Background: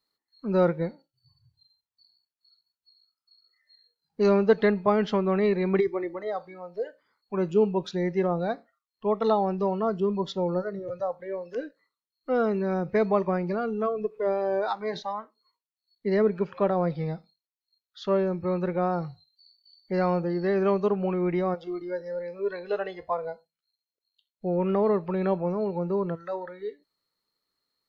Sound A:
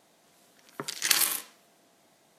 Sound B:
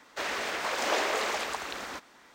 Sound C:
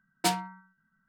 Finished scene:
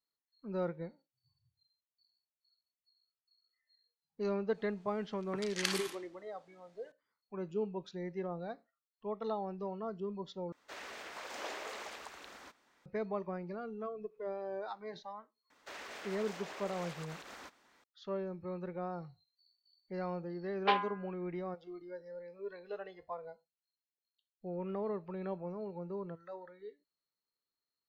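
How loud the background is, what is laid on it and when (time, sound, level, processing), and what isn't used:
background -14 dB
4.54 add A -7 dB + air absorption 84 m
10.52 replace with B -14.5 dB
15.5 add B -11.5 dB + limiter -26.5 dBFS
20.43 add C -0.5 dB + mistuned SSB +87 Hz 330–3300 Hz

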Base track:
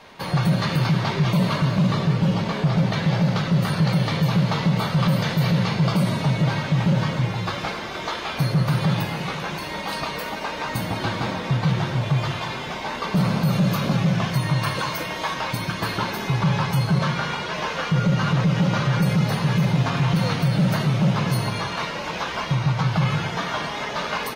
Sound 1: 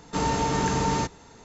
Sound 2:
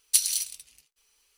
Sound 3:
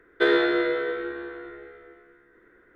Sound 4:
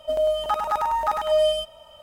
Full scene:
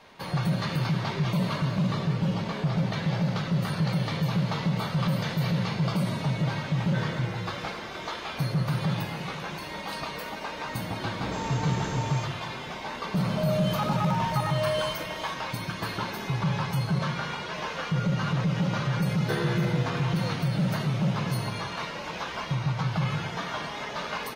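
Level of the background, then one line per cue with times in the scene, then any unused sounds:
base track -6.5 dB
6.73 add 3 -15 dB + HPF 610 Hz
11.04 add 1 -9.5 dB + dispersion highs, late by 0.143 s, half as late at 390 Hz
13.29 add 4 -9.5 dB + fast leveller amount 50%
19.08 add 3 -11.5 dB
not used: 2

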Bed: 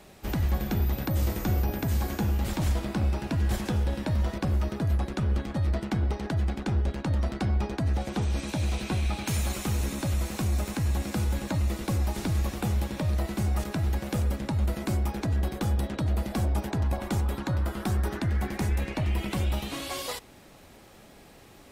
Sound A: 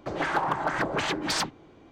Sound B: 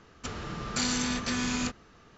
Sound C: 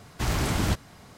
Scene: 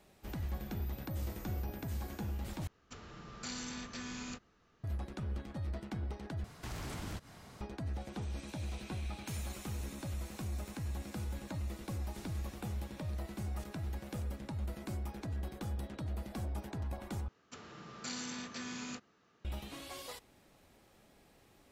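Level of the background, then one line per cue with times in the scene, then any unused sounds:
bed -12.5 dB
2.67 replace with B -13.5 dB
6.44 replace with C -4.5 dB + compressor 2.5:1, threshold -40 dBFS
17.28 replace with B -12.5 dB + HPF 140 Hz
not used: A

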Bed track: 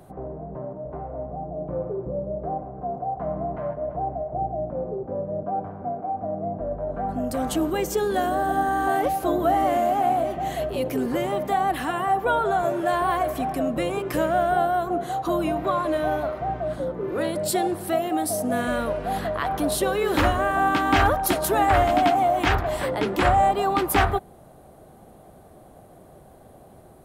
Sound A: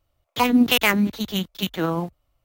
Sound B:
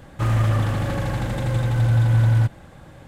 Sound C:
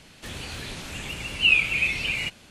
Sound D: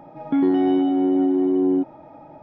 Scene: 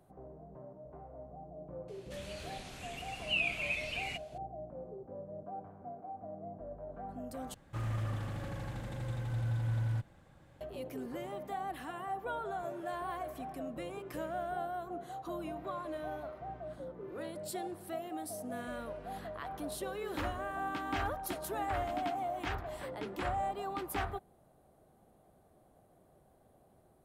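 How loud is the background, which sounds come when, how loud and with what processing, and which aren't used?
bed track -16.5 dB
1.88 add C -12 dB + limiter -11.5 dBFS
7.54 replace with B -16.5 dB
not used: A, D

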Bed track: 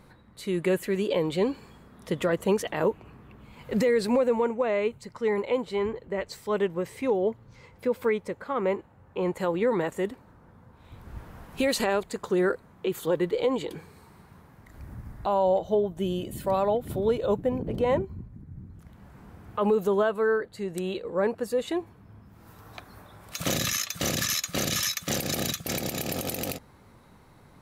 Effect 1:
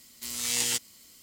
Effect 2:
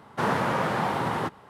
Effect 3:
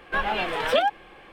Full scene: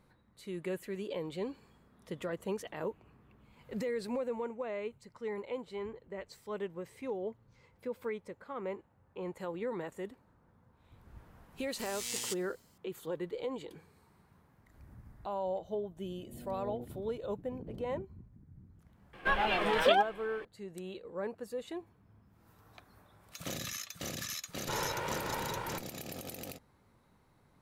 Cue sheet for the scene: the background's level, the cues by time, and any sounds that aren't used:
bed track -12.5 dB
11.56 add 1 -10.5 dB + mismatched tape noise reduction decoder only
16.07 add 1 -0.5 dB + steep low-pass 750 Hz 72 dB/oct
19.13 add 3 -4 dB
24.5 add 2 -10 dB + minimum comb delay 2.1 ms

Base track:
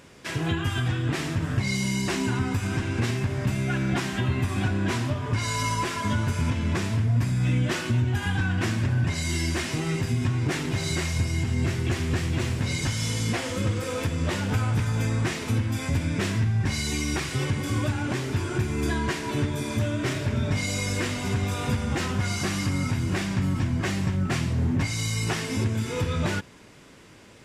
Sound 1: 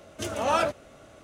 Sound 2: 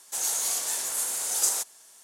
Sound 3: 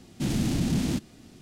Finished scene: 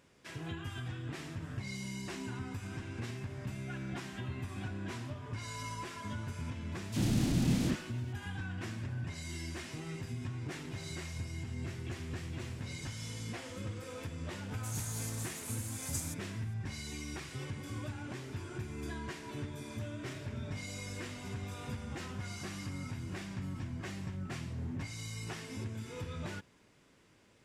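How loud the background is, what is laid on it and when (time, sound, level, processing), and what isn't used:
base track -15 dB
6.72 add 3 -4.5 dB + dispersion lows, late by 42 ms, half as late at 1500 Hz
14.51 add 2 -15.5 dB
not used: 1

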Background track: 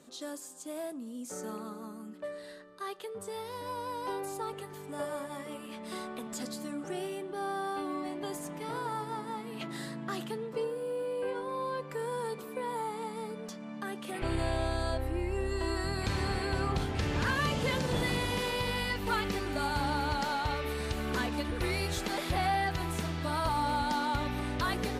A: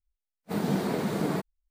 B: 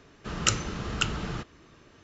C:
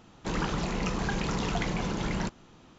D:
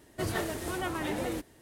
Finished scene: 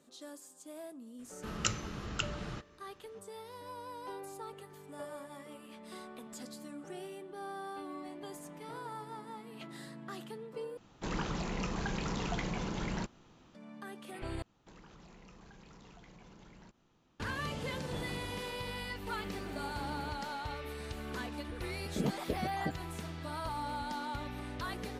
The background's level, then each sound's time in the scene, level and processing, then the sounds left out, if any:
background track -8 dB
1.18 add B -8 dB, fades 0.02 s
10.77 replace with C -6 dB
14.42 replace with C -16 dB + compressor 5:1, threshold -37 dBFS
18.69 add A -16 dB + soft clip -28.5 dBFS
21.36 add A -4 dB + random spectral dropouts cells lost 83%
not used: D

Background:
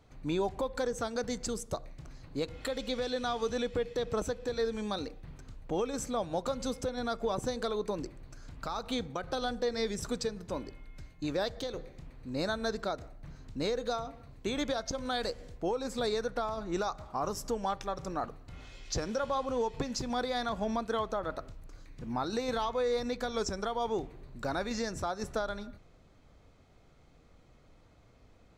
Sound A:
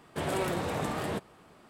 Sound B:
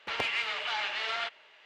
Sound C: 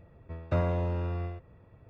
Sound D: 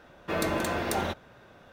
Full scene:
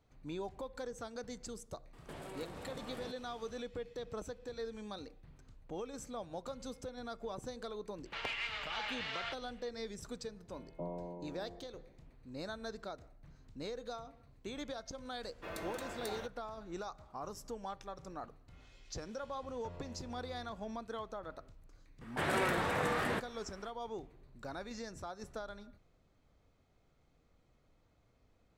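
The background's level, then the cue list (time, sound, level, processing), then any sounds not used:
background -10.5 dB
1.93 add A -4.5 dB + compressor 5:1, threshold -41 dBFS
8.05 add B -8 dB
10.27 add C -10.5 dB + Chebyshev band-pass 150–1000 Hz, order 5
15.14 add D -14 dB + bell 170 Hz -5.5 dB 2.3 oct
19.13 add C -16 dB + compressor 3:1, threshold -32 dBFS
22.01 add A -5 dB + bell 1700 Hz +10 dB 1.4 oct

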